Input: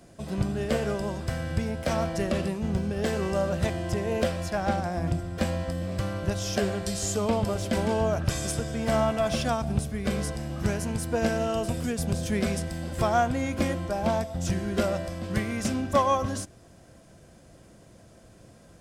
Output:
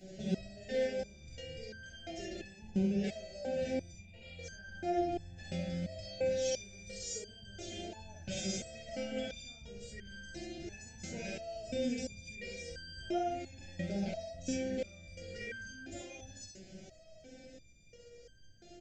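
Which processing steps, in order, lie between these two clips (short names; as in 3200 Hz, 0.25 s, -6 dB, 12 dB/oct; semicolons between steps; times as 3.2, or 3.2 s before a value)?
bell 2400 Hz +3 dB 0.31 oct; in parallel at +2 dB: compressor, threshold -37 dBFS, peak gain reduction 18 dB; on the sum: limiter -21.5 dBFS, peak gain reduction 11 dB; 3.91–4.39 fixed phaser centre 1700 Hz, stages 6; on a send: early reflections 46 ms -4.5 dB, 65 ms -3.5 dB; on the sum: downsampling 16000 Hz; Butterworth band-stop 1100 Hz, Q 1; stepped resonator 2.9 Hz 190–1600 Hz; gain +6.5 dB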